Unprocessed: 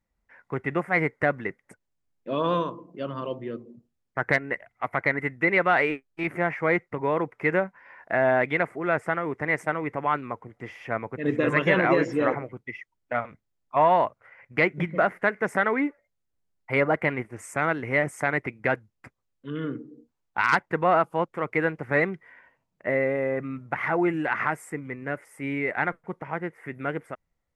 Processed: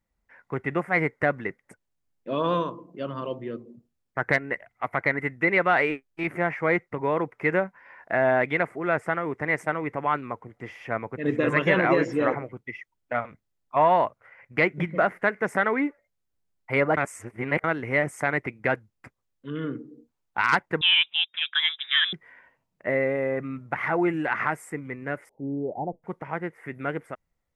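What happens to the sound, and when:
0:16.97–0:17.64: reverse
0:20.81–0:22.13: voice inversion scrambler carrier 3,700 Hz
0:25.29–0:26.03: Butterworth low-pass 850 Hz 72 dB per octave

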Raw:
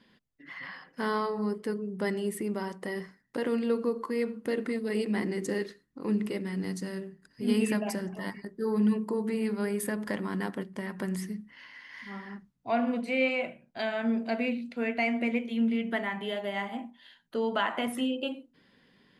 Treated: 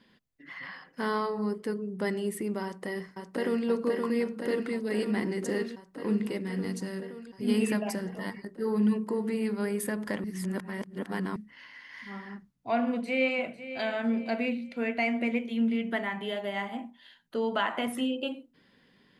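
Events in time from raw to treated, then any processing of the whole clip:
0:02.64–0:03.67: delay throw 520 ms, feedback 80%, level −4 dB
0:10.24–0:11.36: reverse
0:12.88–0:13.63: delay throw 500 ms, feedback 40%, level −13 dB

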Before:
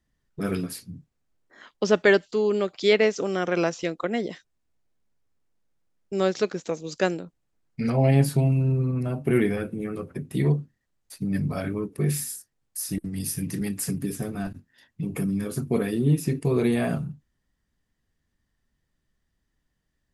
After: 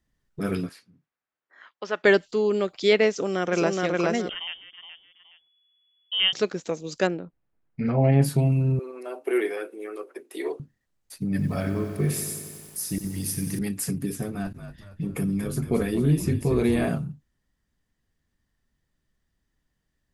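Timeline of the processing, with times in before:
0:00.69–0:02.04: resonant band-pass 1,500 Hz, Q 1
0:03.10–0:03.79: delay throw 420 ms, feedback 30%, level −1 dB
0:04.29–0:06.33: voice inversion scrambler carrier 3,400 Hz
0:07.07–0:08.22: low-pass filter 2,300 Hz
0:08.79–0:10.60: elliptic high-pass filter 350 Hz, stop band 70 dB
0:11.30–0:13.59: feedback echo at a low word length 92 ms, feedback 80%, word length 8 bits, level −9.5 dB
0:14.33–0:16.89: echo with shifted repeats 230 ms, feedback 49%, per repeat −49 Hz, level −9.5 dB

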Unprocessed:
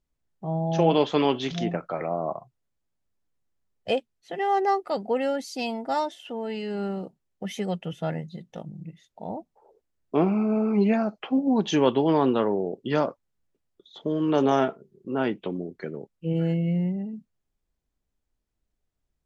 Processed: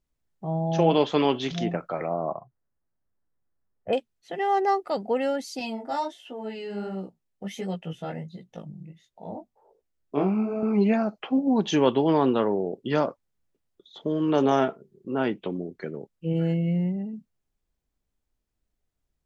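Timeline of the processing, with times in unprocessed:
0:02.13–0:03.93: Butterworth low-pass 1,900 Hz
0:05.59–0:10.63: chorus effect 1.4 Hz, delay 15.5 ms, depth 5.8 ms

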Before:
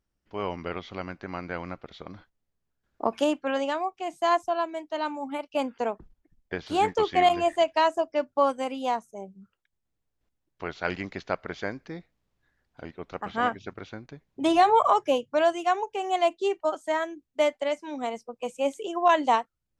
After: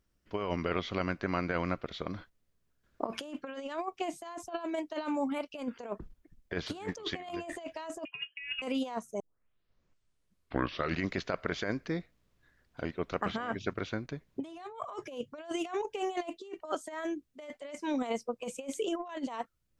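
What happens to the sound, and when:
0:08.05–0:08.62: voice inversion scrambler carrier 3,100 Hz
0:09.20: tape start 1.89 s
whole clip: parametric band 820 Hz −7.5 dB 0.25 octaves; brickwall limiter −19.5 dBFS; compressor whose output falls as the input rises −34 dBFS, ratio −0.5

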